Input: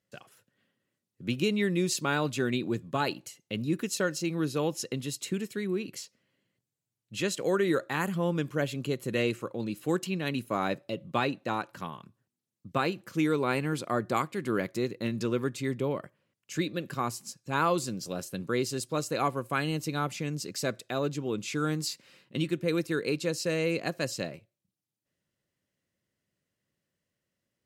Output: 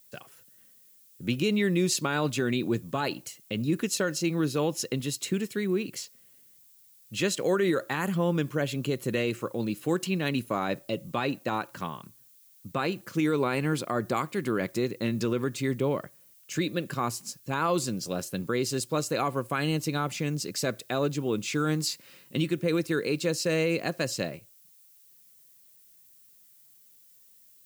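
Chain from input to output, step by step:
background noise violet −61 dBFS
brickwall limiter −20 dBFS, peak gain reduction 6 dB
level +3.5 dB

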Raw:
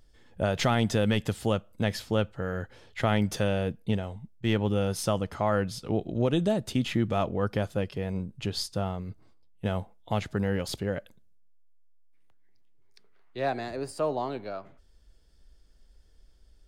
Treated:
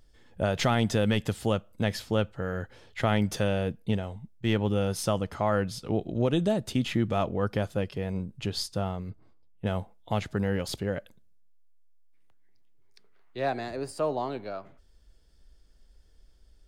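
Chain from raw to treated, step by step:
0:09.10–0:09.67: high-shelf EQ 3,400 Hz −10.5 dB

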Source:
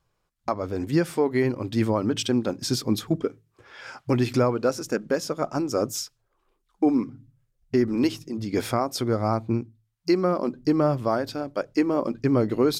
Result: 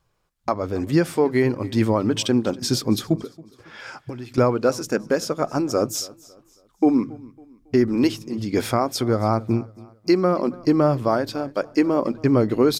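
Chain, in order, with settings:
0:03.16–0:04.38: downward compressor 8 to 1, threshold −35 dBFS, peak gain reduction 16.5 dB
repeating echo 276 ms, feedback 38%, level −22 dB
level +3.5 dB

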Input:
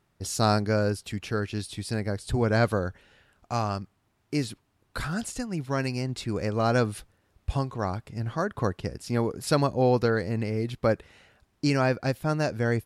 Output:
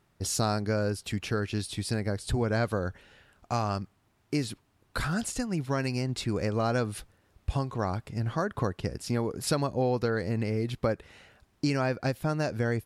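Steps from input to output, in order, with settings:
downward compressor 3 to 1, threshold −27 dBFS, peak gain reduction 8.5 dB
level +2 dB

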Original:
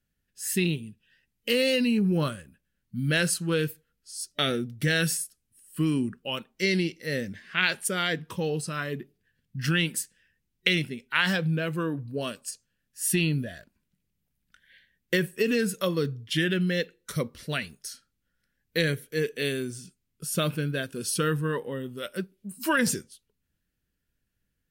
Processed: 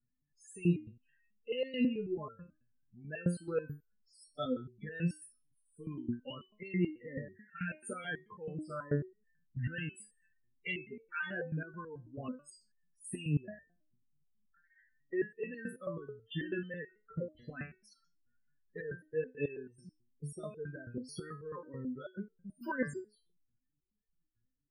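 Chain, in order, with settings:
high-shelf EQ 3,200 Hz −11 dB
spectral peaks only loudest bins 16
downward compressor 1.5 to 1, threshold −35 dBFS, peak gain reduction 5.5 dB
step-sequenced resonator 9.2 Hz 120–450 Hz
level +7.5 dB

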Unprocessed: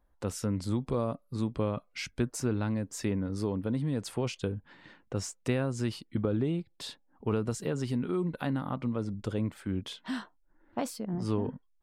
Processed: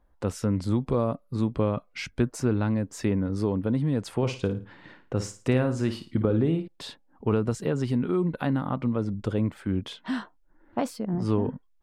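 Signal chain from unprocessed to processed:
high-shelf EQ 3,900 Hz −8.5 dB
0:04.17–0:06.68: flutter between parallel walls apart 9.5 metres, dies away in 0.33 s
level +5.5 dB

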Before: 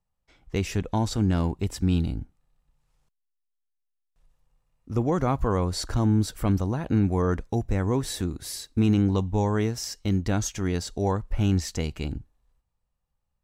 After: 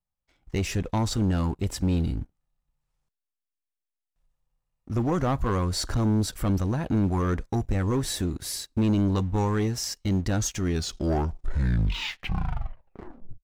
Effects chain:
turntable brake at the end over 2.87 s
notch filter 460 Hz, Q 12
leveller curve on the samples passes 2
level −5 dB

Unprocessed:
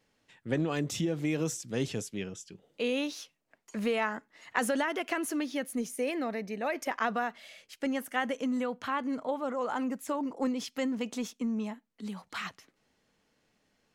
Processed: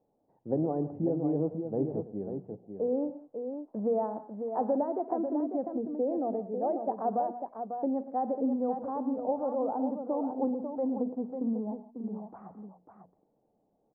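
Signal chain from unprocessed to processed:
elliptic low-pass filter 790 Hz, stop band 80 dB
spectral tilt +2.5 dB per octave
mains-hum notches 60/120/180/240 Hz
on a send: multi-tap delay 53/113/172/546 ms −19/−14.5/−18/−7 dB
on the sum: level +5.5 dB

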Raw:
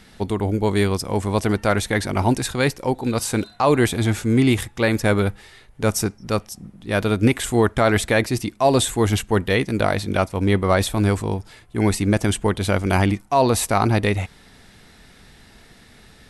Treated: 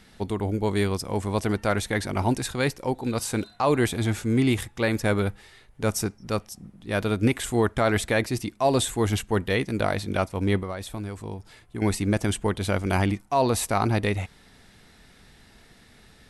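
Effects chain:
0:10.59–0:11.82: downward compressor 6 to 1, threshold −25 dBFS, peak gain reduction 12 dB
level −5 dB

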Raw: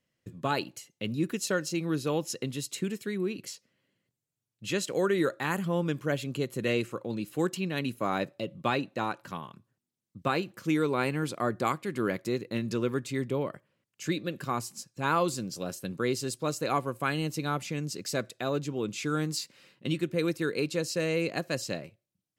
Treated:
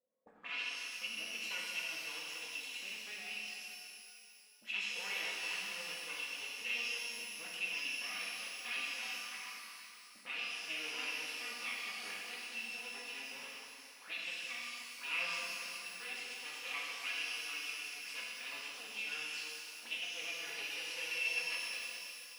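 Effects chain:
lower of the sound and its delayed copy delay 4.1 ms
parametric band 230 Hz +5 dB 0.88 octaves
envelope filter 540–2,700 Hz, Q 7, up, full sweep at −35.5 dBFS
reverb with rising layers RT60 2.7 s, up +12 semitones, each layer −8 dB, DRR −5 dB
level +2.5 dB

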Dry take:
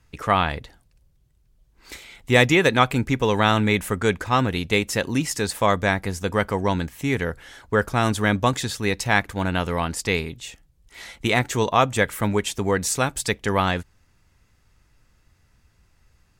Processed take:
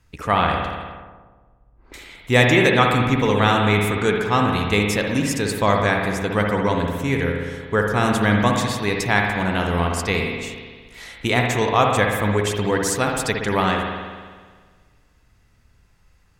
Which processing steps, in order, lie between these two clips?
spring reverb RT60 1.6 s, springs 58 ms, chirp 30 ms, DRR 1 dB
0:00.47–0:01.94: low-pass that shuts in the quiet parts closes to 750 Hz, open at −22.5 dBFS

